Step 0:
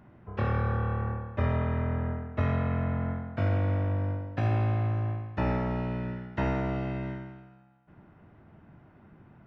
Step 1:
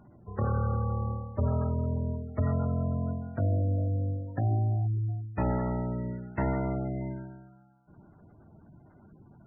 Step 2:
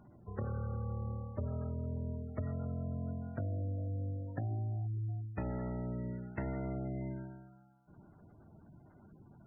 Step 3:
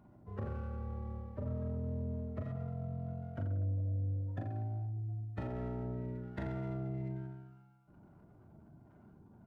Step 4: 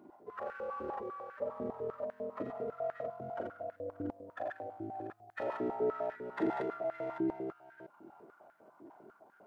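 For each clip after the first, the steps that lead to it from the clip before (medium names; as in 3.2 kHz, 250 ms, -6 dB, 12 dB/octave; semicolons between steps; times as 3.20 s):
spectral gate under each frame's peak -20 dB strong
dynamic bell 1 kHz, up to -8 dB, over -53 dBFS, Q 2.4; compression, threshold -31 dBFS, peak gain reduction 8 dB; trim -3.5 dB
on a send: reverse bouncing-ball echo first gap 40 ms, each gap 1.1×, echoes 5; on the sum: sliding maximum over 5 samples; trim -3 dB
chunks repeated in reverse 342 ms, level -2 dB; step-sequenced high-pass 10 Hz 330–1600 Hz; trim +2.5 dB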